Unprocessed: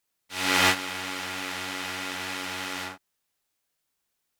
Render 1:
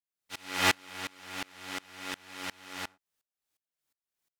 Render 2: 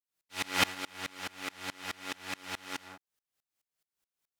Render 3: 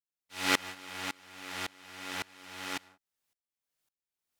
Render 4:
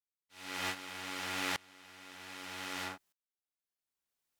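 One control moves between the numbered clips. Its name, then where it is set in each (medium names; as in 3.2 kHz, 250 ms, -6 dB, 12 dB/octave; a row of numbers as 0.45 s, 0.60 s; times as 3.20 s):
sawtooth tremolo in dB, rate: 2.8 Hz, 4.7 Hz, 1.8 Hz, 0.64 Hz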